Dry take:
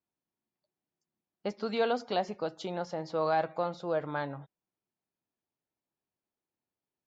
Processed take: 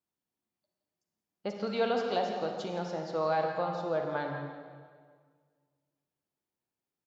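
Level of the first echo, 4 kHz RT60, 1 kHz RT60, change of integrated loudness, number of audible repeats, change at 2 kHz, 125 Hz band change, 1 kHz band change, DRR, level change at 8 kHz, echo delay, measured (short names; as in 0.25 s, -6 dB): -11.5 dB, 1.5 s, 1.7 s, +0.5 dB, 2, +0.5 dB, +1.0 dB, 0.0 dB, 2.5 dB, n/a, 0.169 s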